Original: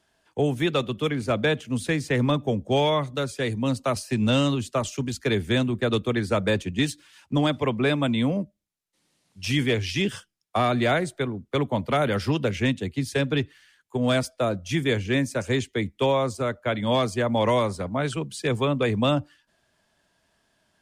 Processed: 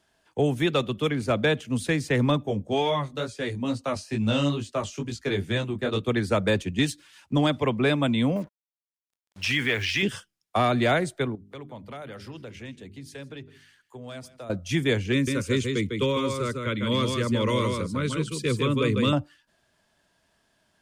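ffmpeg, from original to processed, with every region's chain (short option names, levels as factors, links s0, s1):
-filter_complex "[0:a]asettb=1/sr,asplit=3[s0][s1][s2];[s0]atrim=end=2.434[s3];[s1]atrim=start=2.43:end=6.08,asetpts=PTS-STARTPTS,afade=t=in:d=0.004:c=qsin,afade=t=out:st=3.646:d=0.004:c=qsin,acrossover=split=8200[s4][s5];[s5]acompressor=threshold=0.00141:ratio=4:attack=1:release=60[s6];[s4][s6]amix=inputs=2:normalize=0,flanger=delay=17.5:depth=3.3:speed=2.2[s7];[s2]atrim=start=6.076[s8];[s3][s7]acrossfade=d=0.004:c1=hsin:c2=qsin[s9];[s9][s8]acrossfade=d=0.004:c1=qsin:c2=hsin,asettb=1/sr,asplit=3[s10][s11][s12];[s10]atrim=end=8.364[s13];[s11]atrim=start=8.36:end=10.03,asetpts=PTS-STARTPTS,afade=t=in:d=0.004:c=qsin,afade=t=out:st=1.666:d=0.004:c=qsin,equalizer=f=1700:t=o:w=2.4:g=14.5,acompressor=threshold=0.0447:ratio=2:attack=3.2:release=140:knee=1:detection=peak,acrusher=bits=7:mix=0:aa=0.5[s14];[s12]atrim=start=10.026[s15];[s13][s14]acrossfade=d=0.004:c1=hsin:c2=qsin[s16];[s16][s15]acrossfade=d=0.004:c1=qsin:c2=hsin,asettb=1/sr,asplit=3[s17][s18][s19];[s17]atrim=end=11.354[s20];[s18]atrim=start=11.35:end=14.5,asetpts=PTS-STARTPTS,afade=t=in:d=0.004:c=qsin,afade=t=out:st=3.146:d=0.004:c=qsin,bandreject=f=50:t=h:w=6,bandreject=f=100:t=h:w=6,bandreject=f=150:t=h:w=6,bandreject=f=200:t=h:w=6,bandreject=f=250:t=h:w=6,bandreject=f=300:t=h:w=6,bandreject=f=350:t=h:w=6,bandreject=f=400:t=h:w=6,acompressor=threshold=0.00316:ratio=2:attack=3.2:release=140:knee=1:detection=peak,aecho=1:1:159:0.119,atrim=end_sample=138915[s21];[s19]atrim=start=14.496[s22];[s20][s21]acrossfade=d=0.004:c1=hsin:c2=qsin[s23];[s23][s22]acrossfade=d=0.004:c1=qsin:c2=hsin,asettb=1/sr,asplit=3[s24][s25][s26];[s24]atrim=end=15.124[s27];[s25]atrim=start=15.12:end=19.13,asetpts=PTS-STARTPTS,afade=t=in:d=0.004:c=qsin,afade=t=out:st=4.006:d=0.004:c=qsin,asuperstop=centerf=740:order=4:qfactor=1.3,equalizer=f=1700:w=6.4:g=-8,aecho=1:1:152:0.596,atrim=end_sample=176841[s28];[s26]atrim=start=19.126[s29];[s27][s28]acrossfade=d=0.004:c1=hsin:c2=qsin[s30];[s30][s29]acrossfade=d=0.004:c1=qsin:c2=hsin"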